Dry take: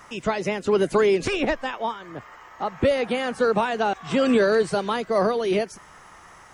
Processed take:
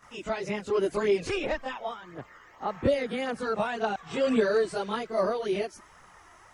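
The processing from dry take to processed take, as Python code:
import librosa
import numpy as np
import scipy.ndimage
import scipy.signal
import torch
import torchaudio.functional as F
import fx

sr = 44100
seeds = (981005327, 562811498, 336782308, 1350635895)

y = fx.chorus_voices(x, sr, voices=2, hz=0.91, base_ms=24, depth_ms=1.7, mix_pct=70)
y = F.gain(torch.from_numpy(y), -4.0).numpy()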